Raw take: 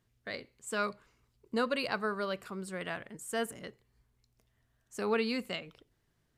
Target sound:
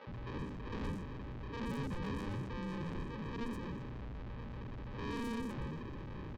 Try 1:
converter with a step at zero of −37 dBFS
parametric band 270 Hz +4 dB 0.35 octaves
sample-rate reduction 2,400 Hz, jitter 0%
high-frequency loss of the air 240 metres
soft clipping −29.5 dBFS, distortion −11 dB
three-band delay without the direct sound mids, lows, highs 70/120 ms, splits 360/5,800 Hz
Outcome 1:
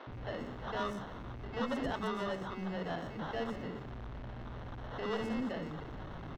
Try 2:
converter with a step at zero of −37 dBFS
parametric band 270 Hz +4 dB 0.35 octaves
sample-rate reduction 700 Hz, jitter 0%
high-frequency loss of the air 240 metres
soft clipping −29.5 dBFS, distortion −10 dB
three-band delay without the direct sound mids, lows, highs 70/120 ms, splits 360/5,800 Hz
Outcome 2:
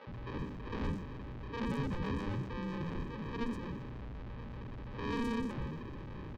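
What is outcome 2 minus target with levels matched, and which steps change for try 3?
soft clipping: distortion −4 dB
change: soft clipping −35.5 dBFS, distortion −6 dB

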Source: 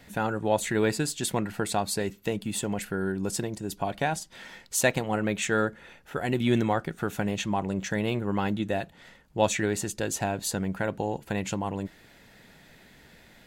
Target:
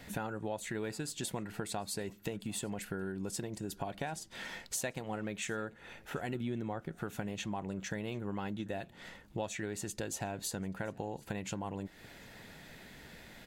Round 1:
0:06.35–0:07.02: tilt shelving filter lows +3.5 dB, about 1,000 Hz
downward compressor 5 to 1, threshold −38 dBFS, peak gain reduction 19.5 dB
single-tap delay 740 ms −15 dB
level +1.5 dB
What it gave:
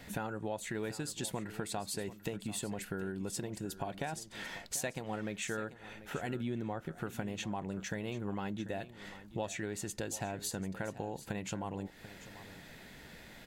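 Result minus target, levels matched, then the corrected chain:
echo-to-direct +10.5 dB
0:06.35–0:07.02: tilt shelving filter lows +3.5 dB, about 1,000 Hz
downward compressor 5 to 1, threshold −38 dBFS, peak gain reduction 19.5 dB
single-tap delay 740 ms −25.5 dB
level +1.5 dB

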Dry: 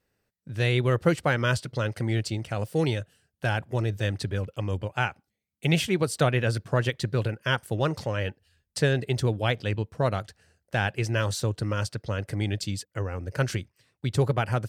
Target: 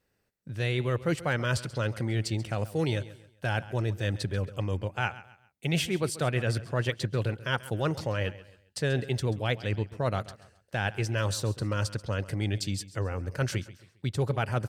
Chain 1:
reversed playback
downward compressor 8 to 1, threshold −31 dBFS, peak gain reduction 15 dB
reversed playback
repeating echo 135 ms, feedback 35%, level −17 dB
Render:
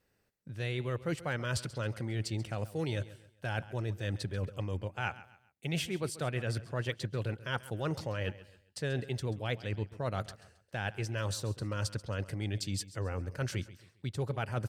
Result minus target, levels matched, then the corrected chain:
downward compressor: peak gain reduction +6.5 dB
reversed playback
downward compressor 8 to 1, threshold −23.5 dBFS, peak gain reduction 8.5 dB
reversed playback
repeating echo 135 ms, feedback 35%, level −17 dB

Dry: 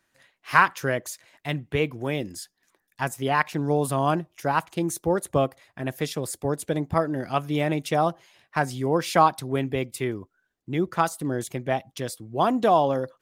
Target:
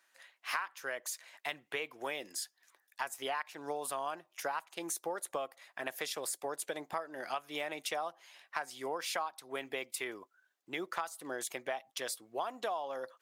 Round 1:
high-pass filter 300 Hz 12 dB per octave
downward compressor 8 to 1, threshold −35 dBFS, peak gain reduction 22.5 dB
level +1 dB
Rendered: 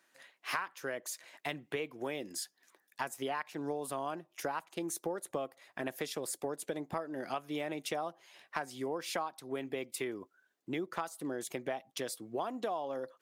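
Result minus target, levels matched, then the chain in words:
250 Hz band +7.5 dB
high-pass filter 710 Hz 12 dB per octave
downward compressor 8 to 1, threshold −35 dBFS, peak gain reduction 22 dB
level +1 dB

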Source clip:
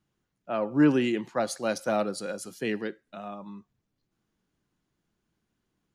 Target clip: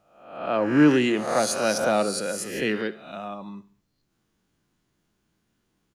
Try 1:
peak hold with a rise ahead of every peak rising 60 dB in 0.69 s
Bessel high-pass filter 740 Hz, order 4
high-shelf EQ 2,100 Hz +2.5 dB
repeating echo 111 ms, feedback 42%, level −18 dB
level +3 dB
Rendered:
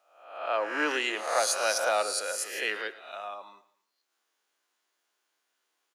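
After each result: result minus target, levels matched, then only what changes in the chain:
echo 41 ms late; 1,000 Hz band +3.5 dB
change: repeating echo 70 ms, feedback 42%, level −18 dB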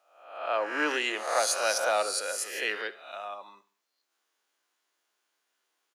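1,000 Hz band +3.5 dB
remove: Bessel high-pass filter 740 Hz, order 4

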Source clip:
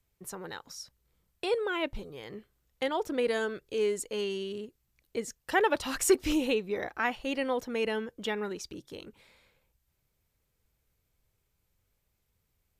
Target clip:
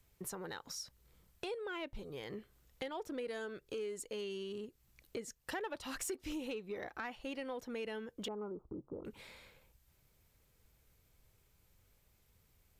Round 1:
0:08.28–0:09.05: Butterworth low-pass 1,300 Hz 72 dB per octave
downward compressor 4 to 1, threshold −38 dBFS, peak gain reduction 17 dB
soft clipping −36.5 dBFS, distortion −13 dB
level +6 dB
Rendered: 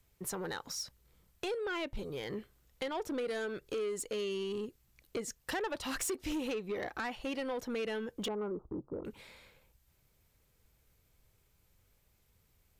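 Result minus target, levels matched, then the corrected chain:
downward compressor: peak gain reduction −7.5 dB
0:08.28–0:09.05: Butterworth low-pass 1,300 Hz 72 dB per octave
downward compressor 4 to 1, threshold −48 dBFS, peak gain reduction 24.5 dB
soft clipping −36.5 dBFS, distortion −22 dB
level +6 dB

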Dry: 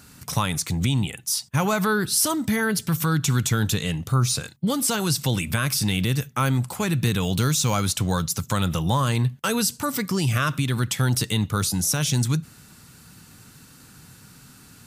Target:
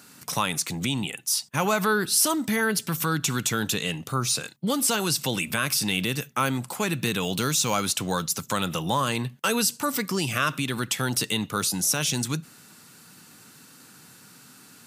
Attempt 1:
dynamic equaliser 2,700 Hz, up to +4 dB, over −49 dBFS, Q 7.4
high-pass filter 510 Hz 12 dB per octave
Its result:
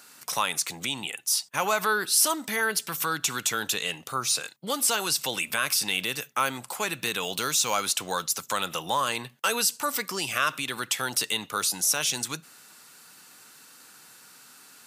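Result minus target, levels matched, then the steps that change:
250 Hz band −9.5 dB
change: high-pass filter 220 Hz 12 dB per octave

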